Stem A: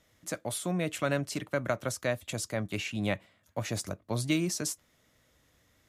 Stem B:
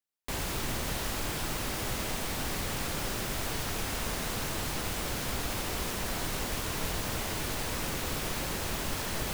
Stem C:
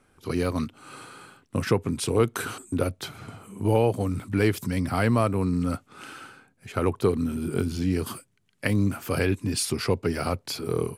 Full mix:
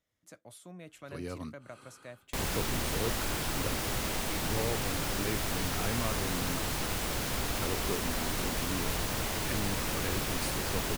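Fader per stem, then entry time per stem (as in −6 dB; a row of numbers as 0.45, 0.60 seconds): −17.0, +0.5, −13.5 decibels; 0.00, 2.05, 0.85 seconds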